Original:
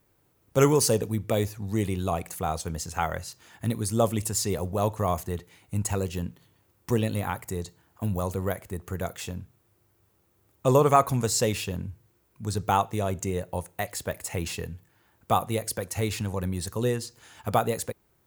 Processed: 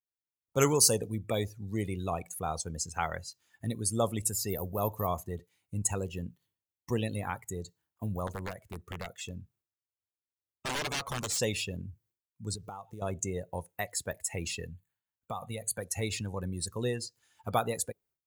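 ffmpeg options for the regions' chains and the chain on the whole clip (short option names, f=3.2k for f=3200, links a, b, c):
-filter_complex "[0:a]asettb=1/sr,asplit=3[a][b][c];[a]atrim=end=4.294[d];[b]atrim=start=4.29:end=5.08,asetpts=PTS-STARTPTS,afade=t=in:d=0.004:c=qsin,afade=t=out:st=0.786:d=0.004:c=qsin,equalizer=f=14k:w=1.2:g=14,acrossover=split=3400[e][f];[f]acompressor=threshold=-31dB:ratio=4:attack=1:release=60[g];[e][g]amix=inputs=2:normalize=0[h];[c]atrim=start=5.076[i];[d][h]acrossfade=d=0.004:c1=hsin:c2=qsin[j];[j][i]acrossfade=d=0.004:c1=qsin:c2=hsin,asettb=1/sr,asplit=3[k][l][m];[k]atrim=end=8.274[n];[l]atrim=start=8.27:end=11.4,asetpts=PTS-STARTPTS,afade=t=in:d=0.004:c=qsin,afade=t=out:st=3.126:d=0.004:c=qsin,acompressor=threshold=-27dB:ratio=2.5:attack=3.2:release=140:knee=1:detection=peak,aeval=exprs='(mod(15*val(0)+1,2)-1)/15':c=same,highshelf=f=10k:g=-3.5[o];[m]atrim=start=11.396[p];[n][o]acrossfade=d=0.004:c1=hsin:c2=qsin[q];[q][p]acrossfade=d=0.004:c1=qsin:c2=hsin,asettb=1/sr,asplit=3[r][s][t];[r]atrim=end=12.554[u];[s]atrim=start=12.55:end=13.02,asetpts=PTS-STARTPTS,afade=t=in:d=0.004:c=qsin,afade=t=out:st=0.466:d=0.004:c=qsin,acompressor=threshold=-33dB:ratio=8:attack=3.2:release=140:knee=1:detection=peak,acrusher=bits=6:mode=log:mix=0:aa=0.000001[v];[t]atrim=start=13.016[w];[u][v]acrossfade=d=0.004:c1=hsin:c2=qsin[x];[x][w]acrossfade=d=0.004:c1=qsin:c2=hsin,asettb=1/sr,asplit=3[y][z][aa];[y]atrim=end=14.714[ab];[z]atrim=start=14.71:end=15.79,asetpts=PTS-STARTPTS,afade=t=in:d=0.004:c=qsin,afade=t=out:st=1.076:d=0.004:c=qsin,equalizer=f=350:t=o:w=0.51:g=-9.5,acompressor=threshold=-26dB:ratio=16:attack=3.2:release=140:knee=1:detection=peak,asuperstop=centerf=5400:order=20:qfactor=3.8[ac];[aa]atrim=start=15.786[ad];[ab][ac]acrossfade=d=0.004:c1=hsin:c2=qsin[ae];[ae][ad]acrossfade=d=0.004:c1=qsin:c2=hsin,agate=range=-33dB:threshold=-55dB:ratio=3:detection=peak,afftdn=nr=18:nf=-38,highshelf=f=2k:g=10,volume=-6.5dB"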